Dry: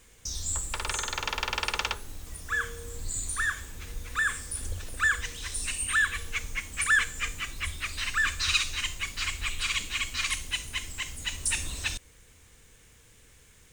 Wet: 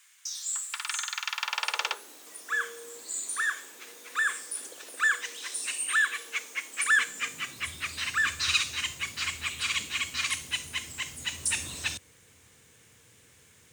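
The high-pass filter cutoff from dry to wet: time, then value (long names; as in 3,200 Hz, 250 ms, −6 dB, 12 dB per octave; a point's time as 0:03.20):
high-pass filter 24 dB per octave
0:01.30 1,200 Hz
0:02.03 320 Hz
0:06.72 320 Hz
0:07.82 91 Hz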